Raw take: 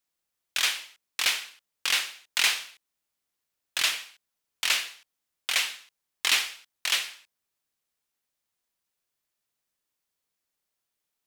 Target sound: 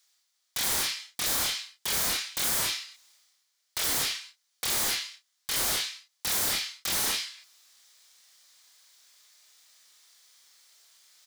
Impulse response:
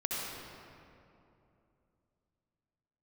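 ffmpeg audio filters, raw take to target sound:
-filter_complex "[0:a]aeval=exprs='if(lt(val(0),0),0.708*val(0),val(0))':channel_layout=same,aderivative[link_01];[1:a]atrim=start_sample=2205,afade=type=out:start_time=0.21:duration=0.01,atrim=end_sample=9702[link_02];[link_01][link_02]afir=irnorm=-1:irlink=0,acrossover=split=6400[link_03][link_04];[link_03]aeval=exprs='0.0944*sin(PI/2*7.94*val(0)/0.0944)':channel_layout=same[link_05];[link_05][link_04]amix=inputs=2:normalize=0,equalizer=frequency=2700:width_type=o:width=0.37:gain=-6.5,asplit=2[link_06][link_07];[link_07]adelay=30,volume=-5dB[link_08];[link_06][link_08]amix=inputs=2:normalize=0,areverse,acompressor=mode=upward:threshold=-40dB:ratio=2.5,areverse,volume=-5dB"

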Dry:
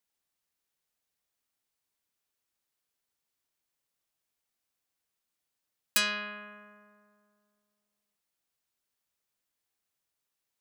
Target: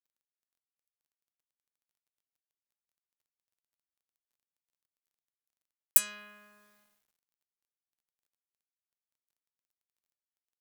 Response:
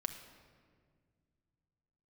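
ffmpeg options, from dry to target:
-af "aexciter=amount=11.8:drive=1.4:freq=6800,acrusher=bits=8:mix=0:aa=0.000001,volume=-12.5dB"

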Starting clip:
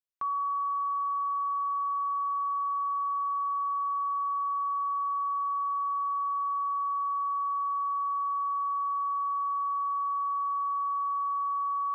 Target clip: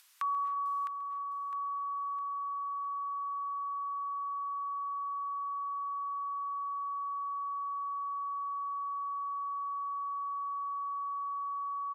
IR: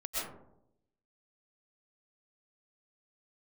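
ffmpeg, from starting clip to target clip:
-filter_complex "[0:a]highpass=frequency=1000:width=0.5412,highpass=frequency=1000:width=1.3066,acompressor=mode=upward:threshold=-36dB:ratio=2.5,aecho=1:1:658|1316|1974|2632|3290:0.398|0.167|0.0702|0.0295|0.0124,asplit=2[link_01][link_02];[1:a]atrim=start_sample=2205,adelay=135[link_03];[link_02][link_03]afir=irnorm=-1:irlink=0,volume=-15.5dB[link_04];[link_01][link_04]amix=inputs=2:normalize=0,aresample=32000,aresample=44100"

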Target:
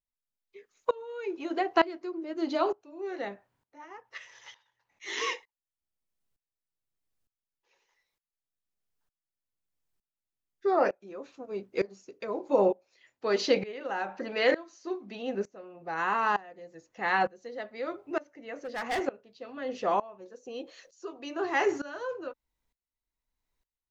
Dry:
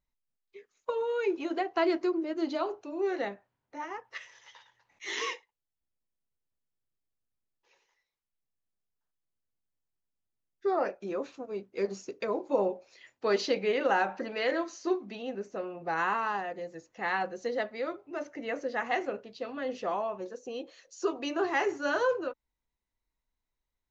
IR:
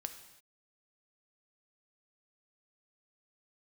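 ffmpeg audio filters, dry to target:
-filter_complex "[0:a]asettb=1/sr,asplit=3[link_01][link_02][link_03];[link_01]atrim=end=18.564[link_04];[link_02]atrim=start=18.56:end=19.06,asetpts=PTS-STARTPTS,afade=type=in:duration=0.004:curve=qsin,afade=type=out:start_time=0.496:duration=0.004:curve=qsin,volume=31dB,asoftclip=hard,volume=-31dB[link_05];[link_03]atrim=start=19.056[link_06];[link_04][link_05]acrossfade=duration=0.004:curve1=hsin:curve2=qsin[link_07];[link_07][link_06]acrossfade=duration=0.004:curve1=qsin:curve2=hsin,aeval=exprs='val(0)*pow(10,-21*if(lt(mod(-1.1*n/s,1),2*abs(-1.1)/1000),1-mod(-1.1*n/s,1)/(2*abs(-1.1)/1000),(mod(-1.1*n/s,1)-2*abs(-1.1)/1000)/(1-2*abs(-1.1)/1000))/20)':channel_layout=same,volume=7dB"

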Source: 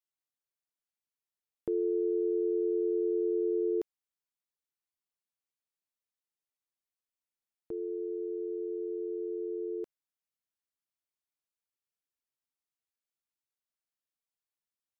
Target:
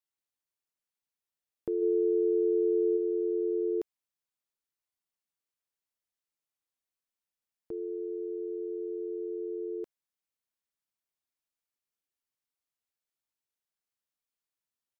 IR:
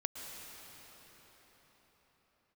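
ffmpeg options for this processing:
-filter_complex "[0:a]asplit=3[link_01][link_02][link_03];[link_01]afade=type=out:start_time=1.81:duration=0.02[link_04];[link_02]asplit=2[link_05][link_06];[link_06]adelay=32,volume=-4dB[link_07];[link_05][link_07]amix=inputs=2:normalize=0,afade=type=in:start_time=1.81:duration=0.02,afade=type=out:start_time=2.96:duration=0.02[link_08];[link_03]afade=type=in:start_time=2.96:duration=0.02[link_09];[link_04][link_08][link_09]amix=inputs=3:normalize=0"

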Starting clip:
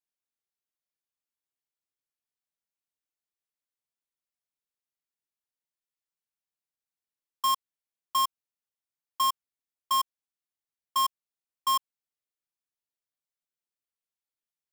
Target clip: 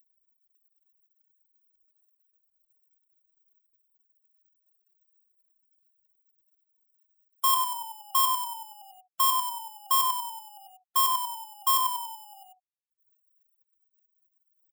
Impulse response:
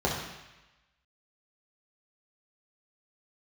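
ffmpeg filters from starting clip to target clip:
-filter_complex "[0:a]asplit=9[link_01][link_02][link_03][link_04][link_05][link_06][link_07][link_08][link_09];[link_02]adelay=94,afreqshift=-41,volume=-6dB[link_10];[link_03]adelay=188,afreqshift=-82,volume=-10.7dB[link_11];[link_04]adelay=282,afreqshift=-123,volume=-15.5dB[link_12];[link_05]adelay=376,afreqshift=-164,volume=-20.2dB[link_13];[link_06]adelay=470,afreqshift=-205,volume=-24.9dB[link_14];[link_07]adelay=564,afreqshift=-246,volume=-29.7dB[link_15];[link_08]adelay=658,afreqshift=-287,volume=-34.4dB[link_16];[link_09]adelay=752,afreqshift=-328,volume=-39.1dB[link_17];[link_01][link_10][link_11][link_12][link_13][link_14][link_15][link_16][link_17]amix=inputs=9:normalize=0,acompressor=mode=upward:threshold=-43dB:ratio=2.5,asplit=2[link_18][link_19];[1:a]atrim=start_sample=2205,atrim=end_sample=3969[link_20];[link_19][link_20]afir=irnorm=-1:irlink=0,volume=-21dB[link_21];[link_18][link_21]amix=inputs=2:normalize=0,aexciter=amount=2.8:drive=5.2:freq=8400,lowshelf=frequency=240:gain=-5,afftfilt=real='re*gte(hypot(re,im),0.00398)':imag='im*gte(hypot(re,im),0.00398)':win_size=1024:overlap=0.75"

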